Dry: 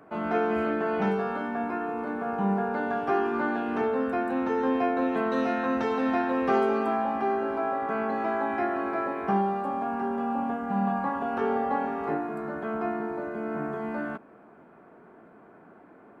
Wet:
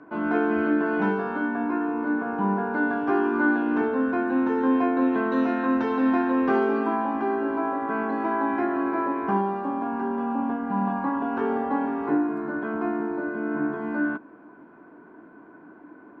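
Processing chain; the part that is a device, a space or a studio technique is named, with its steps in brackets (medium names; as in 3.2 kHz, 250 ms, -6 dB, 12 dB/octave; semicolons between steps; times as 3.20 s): inside a cardboard box (low-pass 4.8 kHz 12 dB/octave; small resonant body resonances 300/1000/1500 Hz, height 14 dB, ringing for 50 ms); trim -2 dB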